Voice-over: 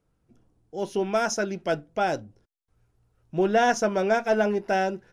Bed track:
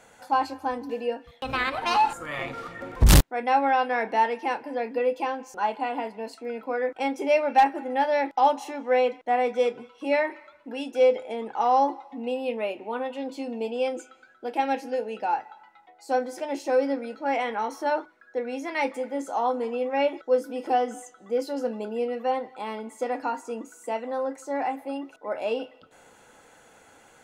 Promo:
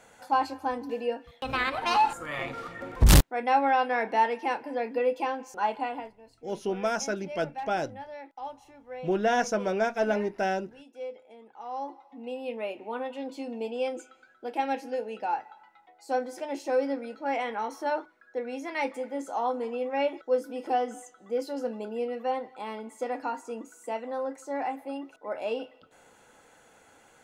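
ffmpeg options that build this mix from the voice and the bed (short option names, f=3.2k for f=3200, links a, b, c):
-filter_complex "[0:a]adelay=5700,volume=-4dB[a];[1:a]volume=13.5dB,afade=t=out:st=5.79:d=0.37:silence=0.141254,afade=t=in:st=11.62:d=1.22:silence=0.177828[b];[a][b]amix=inputs=2:normalize=0"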